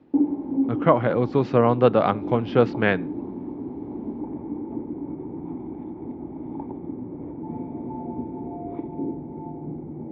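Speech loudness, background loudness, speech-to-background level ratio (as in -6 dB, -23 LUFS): -21.5 LUFS, -32.0 LUFS, 10.5 dB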